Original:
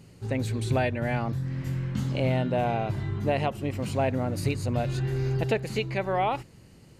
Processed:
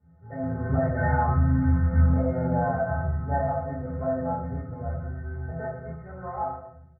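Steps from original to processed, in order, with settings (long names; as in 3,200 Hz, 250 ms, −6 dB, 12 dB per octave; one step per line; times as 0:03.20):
variable-slope delta modulation 32 kbit/s
source passing by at 0:01.40, 10 m/s, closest 6.5 metres
dynamic equaliser 1,200 Hz, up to +5 dB, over −49 dBFS, Q 0.94
Butterworth low-pass 1,700 Hz 72 dB per octave
stiff-string resonator 77 Hz, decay 0.65 s, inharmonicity 0.03
automatic gain control gain up to 11.5 dB
high-pass filter 44 Hz
comb filter 1.5 ms, depth 69%
downward compressor 10 to 1, threshold −32 dBFS, peak gain reduction 13.5 dB
convolution reverb RT60 0.75 s, pre-delay 4 ms, DRR −9 dB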